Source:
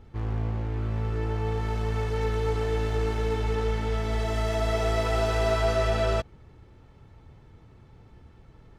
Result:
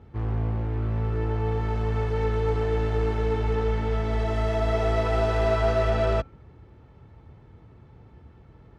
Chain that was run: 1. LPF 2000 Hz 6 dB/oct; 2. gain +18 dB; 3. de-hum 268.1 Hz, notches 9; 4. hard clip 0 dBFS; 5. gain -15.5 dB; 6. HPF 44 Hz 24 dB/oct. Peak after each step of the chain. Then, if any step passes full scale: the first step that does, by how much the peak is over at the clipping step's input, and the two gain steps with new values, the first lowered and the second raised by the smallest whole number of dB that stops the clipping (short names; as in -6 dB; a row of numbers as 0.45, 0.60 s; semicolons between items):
-14.5, +3.5, +3.5, 0.0, -15.5, -12.0 dBFS; step 2, 3.5 dB; step 2 +14 dB, step 5 -11.5 dB